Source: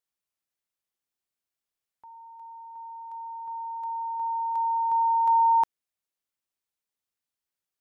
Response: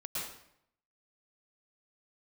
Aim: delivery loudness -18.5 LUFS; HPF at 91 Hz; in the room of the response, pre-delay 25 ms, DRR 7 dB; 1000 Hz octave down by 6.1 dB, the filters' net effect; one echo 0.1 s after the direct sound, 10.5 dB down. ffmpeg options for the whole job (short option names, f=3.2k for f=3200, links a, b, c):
-filter_complex "[0:a]highpass=91,equalizer=f=1k:t=o:g=-6.5,aecho=1:1:100:0.299,asplit=2[a][b];[1:a]atrim=start_sample=2205,adelay=25[c];[b][c]afir=irnorm=-1:irlink=0,volume=-9.5dB[d];[a][d]amix=inputs=2:normalize=0,volume=17dB"